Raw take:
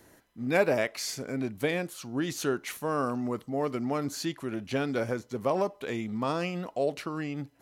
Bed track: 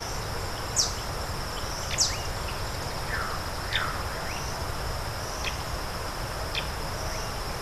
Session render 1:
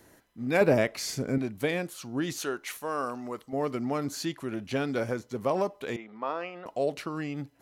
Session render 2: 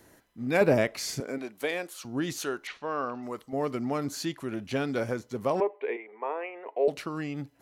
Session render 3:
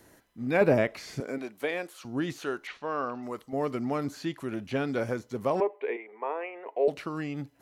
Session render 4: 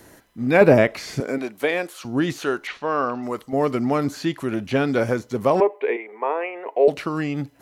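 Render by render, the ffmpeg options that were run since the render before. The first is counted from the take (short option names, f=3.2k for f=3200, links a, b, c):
-filter_complex "[0:a]asettb=1/sr,asplit=3[a][b][c];[a]atrim=end=0.614[d];[b]atrim=start=0.61:end=1.38,asetpts=PTS-STARTPTS,afade=t=in:d=0.004:c=qsin,afade=t=out:st=0.766:d=0.004:c=qsin,lowshelf=f=370:g=10[e];[c]atrim=start=1.376[f];[d][e]acrossfade=d=0.004:c1=hsin:c2=qsin[g];[g][f]acrossfade=d=0.004:c1=qsin:c2=hsin,asettb=1/sr,asplit=3[h][i][j];[h]atrim=end=2.394[k];[i]atrim=start=2.39:end=3.53,asetpts=PTS-STARTPTS,afade=t=in:d=0.004:c=qsin,afade=t=out:st=1.136:d=0.004:c=qsin,equalizer=f=140:w=0.57:g=-11.5[l];[j]atrim=start=3.526[m];[k][l]acrossfade=d=0.004:c1=hsin:c2=qsin[n];[n][m]acrossfade=d=0.004:c1=qsin:c2=hsin,asettb=1/sr,asplit=3[o][p][q];[o]atrim=end=5.964[r];[p]atrim=start=5.96:end=6.66,asetpts=PTS-STARTPTS,afade=t=in:d=0.004:c=qsin,afade=t=out:st=0.696:d=0.004:c=qsin,highpass=500,lowpass=2.1k[s];[q]atrim=start=6.656[t];[r][s]acrossfade=d=0.004:c1=hsin:c2=qsin[u];[u][t]acrossfade=d=0.004:c1=qsin:c2=hsin"
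-filter_complex "[0:a]asettb=1/sr,asplit=3[a][b][c];[a]atrim=end=1.204[d];[b]atrim=start=1.2:end=2.05,asetpts=PTS-STARTPTS,afade=t=in:d=0.004:c=qsin,afade=t=out:st=0.846:d=0.004:c=qsin,highpass=400[e];[c]atrim=start=2.046[f];[d][e]acrossfade=d=0.004:c1=hsin:c2=qsin[g];[g][f]acrossfade=d=0.004:c1=qsin:c2=hsin,asettb=1/sr,asplit=3[h][i][j];[h]atrim=end=2.674[k];[i]atrim=start=2.67:end=3.23,asetpts=PTS-STARTPTS,afade=t=in:d=0.004:c=qsin,afade=t=out:st=0.556:d=0.004:c=qsin,lowpass=f=4.4k:w=0.5412,lowpass=f=4.4k:w=1.3066[l];[j]atrim=start=3.226[m];[k][l]acrossfade=d=0.004:c1=hsin:c2=qsin[n];[n][m]acrossfade=d=0.004:c1=qsin:c2=hsin,asettb=1/sr,asplit=3[o][p][q];[o]atrim=end=5.604[r];[p]atrim=start=5.6:end=6.88,asetpts=PTS-STARTPTS,afade=t=in:d=0.004:c=qsin,afade=t=out:st=1.276:d=0.004:c=qsin,highpass=f=360:w=0.5412,highpass=f=360:w=1.3066,equalizer=f=420:t=q:w=4:g=9,equalizer=f=600:t=q:w=4:g=-3,equalizer=f=900:t=q:w=4:g=4,equalizer=f=1.3k:t=q:w=4:g=-10,equalizer=f=2.2k:t=q:w=4:g=7,lowpass=f=2.4k:w=0.5412,lowpass=f=2.4k:w=1.3066[s];[q]atrim=start=6.876[t];[r][s]acrossfade=d=0.004:c1=hsin:c2=qsin[u];[u][t]acrossfade=d=0.004:c1=qsin:c2=hsin"
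-filter_complex "[0:a]acrossover=split=3200[a][b];[b]acompressor=threshold=-49dB:ratio=4:attack=1:release=60[c];[a][c]amix=inputs=2:normalize=0"
-af "volume=9dB"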